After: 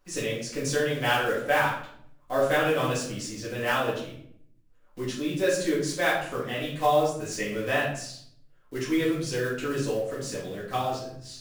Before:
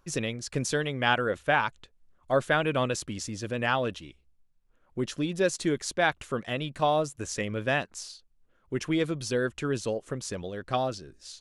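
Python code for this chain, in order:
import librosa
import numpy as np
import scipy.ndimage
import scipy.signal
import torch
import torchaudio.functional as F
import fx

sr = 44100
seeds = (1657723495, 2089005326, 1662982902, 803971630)

y = fx.block_float(x, sr, bits=5)
y = fx.low_shelf(y, sr, hz=210.0, db=-7.0)
y = fx.room_shoebox(y, sr, seeds[0], volume_m3=110.0, walls='mixed', distance_m=2.0)
y = y * 10.0 ** (-6.0 / 20.0)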